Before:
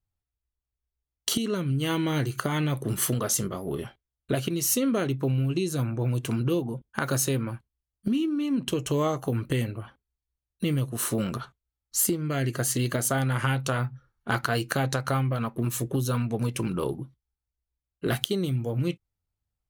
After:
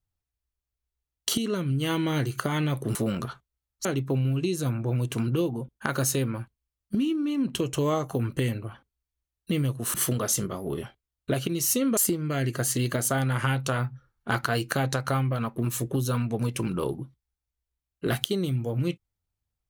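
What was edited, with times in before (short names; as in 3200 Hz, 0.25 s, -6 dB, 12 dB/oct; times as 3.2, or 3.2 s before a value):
2.95–4.98 swap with 11.07–11.97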